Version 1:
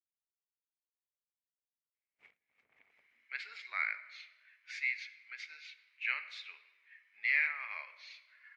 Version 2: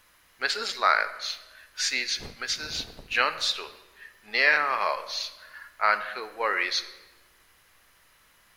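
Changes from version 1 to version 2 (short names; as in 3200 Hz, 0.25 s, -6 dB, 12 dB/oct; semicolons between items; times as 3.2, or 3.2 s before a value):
speech: entry -2.90 s; master: remove band-pass 2200 Hz, Q 10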